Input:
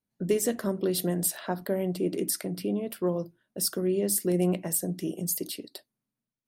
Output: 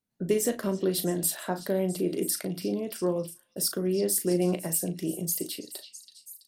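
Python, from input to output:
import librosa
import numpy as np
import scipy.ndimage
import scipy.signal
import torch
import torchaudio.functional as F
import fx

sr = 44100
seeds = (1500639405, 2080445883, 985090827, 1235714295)

y = fx.doubler(x, sr, ms=37.0, db=-9.5)
y = fx.echo_stepped(y, sr, ms=329, hz=3800.0, octaves=0.7, feedback_pct=70, wet_db=-8.5)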